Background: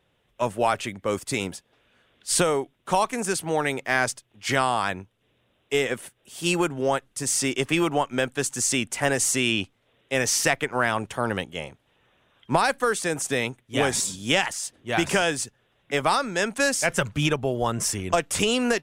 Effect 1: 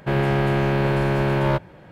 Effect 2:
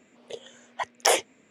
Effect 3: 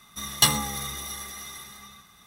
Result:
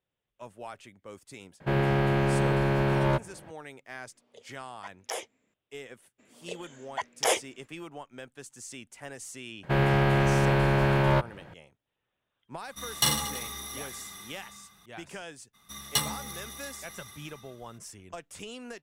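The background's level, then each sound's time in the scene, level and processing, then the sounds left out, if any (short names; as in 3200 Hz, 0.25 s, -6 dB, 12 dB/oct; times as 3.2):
background -19.5 dB
1.6 add 1 -4.5 dB
4.04 add 2 -14.5 dB
6.18 add 2 -2 dB, fades 0.02 s + limiter -10 dBFS
9.63 add 1 -1 dB + bell 300 Hz -4 dB 1.7 oct
12.6 add 3 -6.5 dB + reverse bouncing-ball echo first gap 40 ms, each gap 1.25×, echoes 5
15.53 add 3 -8 dB, fades 0.02 s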